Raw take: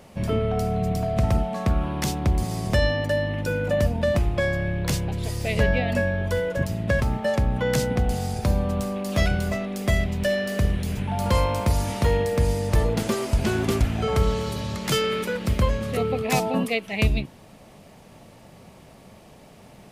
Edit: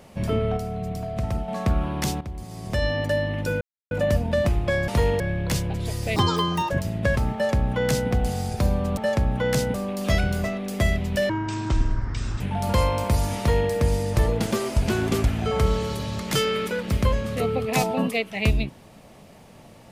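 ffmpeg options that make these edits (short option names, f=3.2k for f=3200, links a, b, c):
-filter_complex "[0:a]asplit=13[a][b][c][d][e][f][g][h][i][j][k][l][m];[a]atrim=end=0.572[n];[b]atrim=start=0.568:end=1.482,asetpts=PTS-STARTPTS,volume=-5.5dB[o];[c]atrim=start=1.478:end=2.21,asetpts=PTS-STARTPTS,afade=t=out:st=0.728:d=0.004:c=hsin:silence=0.211349[p];[d]atrim=start=2.21:end=3.61,asetpts=PTS-STARTPTS,afade=t=in:d=0.78:c=qua:silence=0.211349,afade=t=out:st=1.396:d=0.004:c=hsin,apad=pad_dur=0.3[q];[e]atrim=start=3.61:end=4.582,asetpts=PTS-STARTPTS,afade=t=in:d=0.004:c=hsin[r];[f]atrim=start=11.948:end=12.272[s];[g]atrim=start=4.578:end=5.544[t];[h]atrim=start=5.54:end=6.55,asetpts=PTS-STARTPTS,asetrate=82026,aresample=44100[u];[i]atrim=start=6.546:end=8.822[v];[j]atrim=start=7.178:end=7.952[w];[k]atrim=start=8.818:end=10.374[x];[l]atrim=start=10.37:end=10.97,asetpts=PTS-STARTPTS,asetrate=23814,aresample=44100[y];[m]atrim=start=10.966[z];[n][o]acrossfade=d=0.004:c1=hsin:c2=hsin[aa];[p][q][r]concat=n=3:v=0:a=1[ab];[aa][ab]acrossfade=d=0.004:c1=hsin:c2=hsin[ac];[ac][s]acrossfade=d=0.004:c1=hsin:c2=hsin[ad];[ad][t]acrossfade=d=0.004:c1=hsin:c2=hsin[ae];[ae][u]acrossfade=d=0.004:c1=hsin:c2=hsin[af];[af][v]acrossfade=d=0.004:c1=hsin:c2=hsin[ag];[ag][w]acrossfade=d=0.004:c1=hsin:c2=hsin[ah];[ah][x]acrossfade=d=0.004:c1=hsin:c2=hsin[ai];[ai][y]acrossfade=d=0.004:c1=hsin:c2=hsin[aj];[aj][z]acrossfade=d=0.004:c1=hsin:c2=hsin"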